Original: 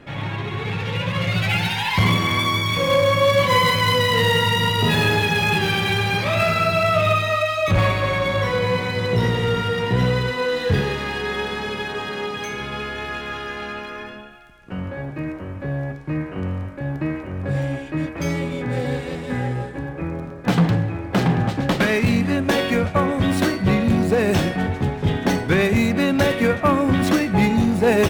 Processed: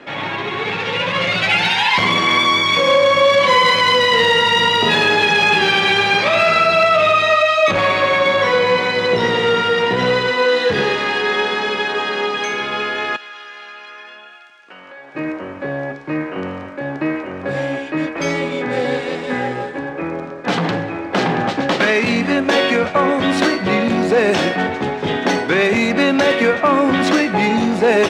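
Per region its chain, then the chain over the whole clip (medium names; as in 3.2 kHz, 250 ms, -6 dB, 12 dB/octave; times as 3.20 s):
13.16–15.15 s: high-pass 1.5 kHz 6 dB/octave + compression 3:1, threshold -43 dBFS
whole clip: bass shelf 210 Hz -7 dB; peak limiter -13 dBFS; three-band isolator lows -17 dB, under 200 Hz, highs -22 dB, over 7.3 kHz; trim +8.5 dB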